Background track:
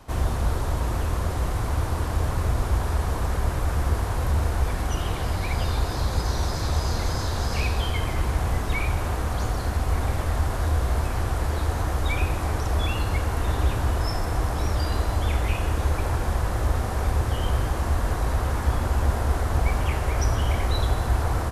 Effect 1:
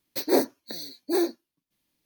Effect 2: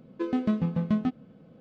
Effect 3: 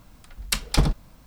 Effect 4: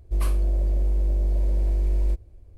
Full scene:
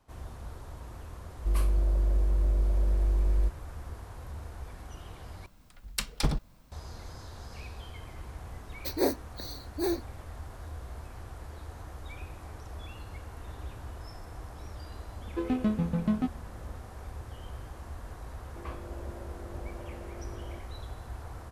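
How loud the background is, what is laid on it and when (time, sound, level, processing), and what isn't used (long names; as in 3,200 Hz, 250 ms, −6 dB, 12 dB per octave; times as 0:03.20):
background track −18.5 dB
0:01.34: mix in 4 −3.5 dB
0:05.46: overwrite with 3 −7.5 dB
0:08.69: mix in 1 −5.5 dB
0:15.17: mix in 2 −2 dB
0:18.44: mix in 4 −5.5 dB + band-pass filter 240–2,200 Hz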